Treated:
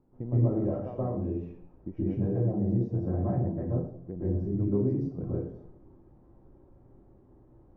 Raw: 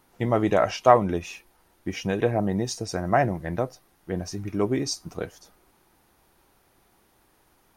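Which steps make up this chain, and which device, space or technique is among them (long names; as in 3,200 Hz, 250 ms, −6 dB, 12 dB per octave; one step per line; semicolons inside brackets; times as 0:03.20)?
television next door (downward compressor 4 to 1, threshold −35 dBFS, peak gain reduction 20.5 dB; low-pass filter 390 Hz 12 dB per octave; convolution reverb RT60 0.60 s, pre-delay 119 ms, DRR −9 dB)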